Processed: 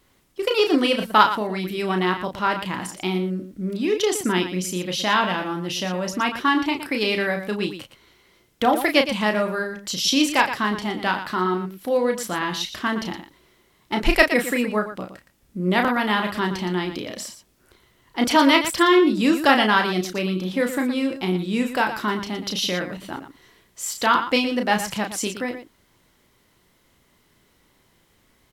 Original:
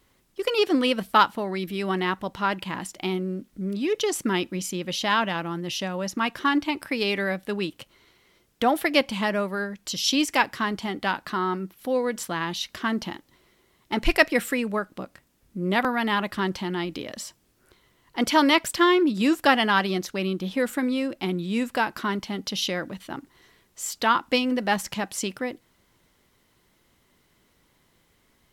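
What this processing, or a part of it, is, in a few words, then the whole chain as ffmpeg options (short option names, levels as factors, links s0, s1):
slapback doubling: -filter_complex "[0:a]asplit=3[s0][s1][s2];[s1]adelay=33,volume=0.501[s3];[s2]adelay=117,volume=0.299[s4];[s0][s3][s4]amix=inputs=3:normalize=0,volume=1.26"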